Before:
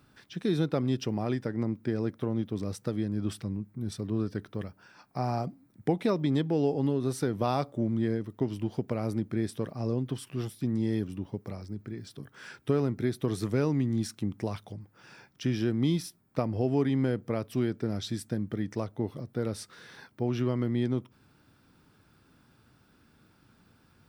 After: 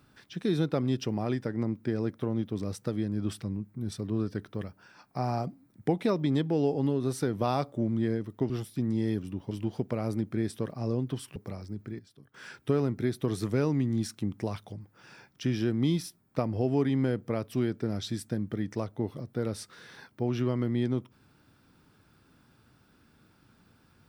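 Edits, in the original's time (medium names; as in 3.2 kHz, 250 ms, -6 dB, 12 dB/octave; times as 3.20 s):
10.35–11.36 s: move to 8.50 s
11.99–12.34 s: gain -12 dB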